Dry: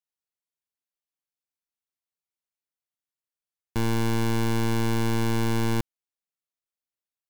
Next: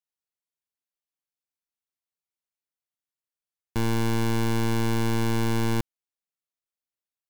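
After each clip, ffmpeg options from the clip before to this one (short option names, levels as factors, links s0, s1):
-af anull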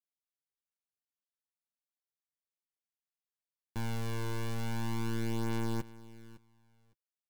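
-af "aecho=1:1:558|1116:0.119|0.0202,flanger=delay=8.5:depth=2.3:regen=-16:speed=0.35:shape=triangular,volume=0.422"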